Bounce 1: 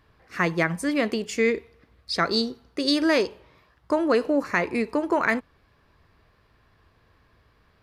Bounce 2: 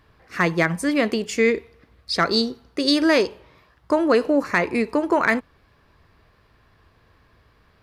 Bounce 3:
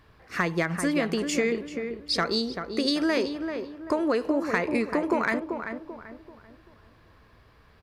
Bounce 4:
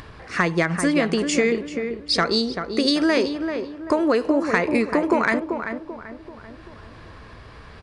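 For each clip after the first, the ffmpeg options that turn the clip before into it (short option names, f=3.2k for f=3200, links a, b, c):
-af "asoftclip=type=hard:threshold=-10.5dB,volume=3.5dB"
-filter_complex "[0:a]acompressor=threshold=-23dB:ratio=4,asplit=2[a][b];[b]adelay=388,lowpass=f=1.7k:p=1,volume=-6.5dB,asplit=2[c][d];[d]adelay=388,lowpass=f=1.7k:p=1,volume=0.39,asplit=2[e][f];[f]adelay=388,lowpass=f=1.7k:p=1,volume=0.39,asplit=2[g][h];[h]adelay=388,lowpass=f=1.7k:p=1,volume=0.39,asplit=2[i][j];[j]adelay=388,lowpass=f=1.7k:p=1,volume=0.39[k];[c][e][g][i][k]amix=inputs=5:normalize=0[l];[a][l]amix=inputs=2:normalize=0"
-af "acompressor=mode=upward:threshold=-38dB:ratio=2.5,aresample=22050,aresample=44100,volume=5.5dB"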